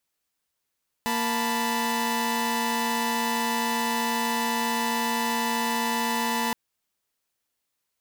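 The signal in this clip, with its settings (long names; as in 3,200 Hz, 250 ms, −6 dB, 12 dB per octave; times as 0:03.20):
held notes A#3/A5/B5 saw, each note −26 dBFS 5.47 s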